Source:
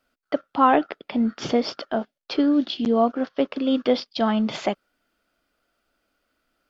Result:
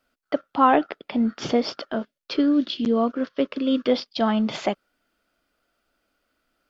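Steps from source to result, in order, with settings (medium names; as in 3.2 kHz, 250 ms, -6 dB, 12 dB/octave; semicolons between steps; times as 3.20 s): 1.92–3.92 s: peaking EQ 780 Hz -14.5 dB 0.28 oct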